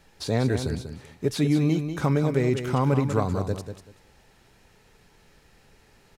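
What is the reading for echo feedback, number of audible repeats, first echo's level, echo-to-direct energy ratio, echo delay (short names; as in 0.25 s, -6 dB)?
20%, 2, -8.5 dB, -8.5 dB, 0.192 s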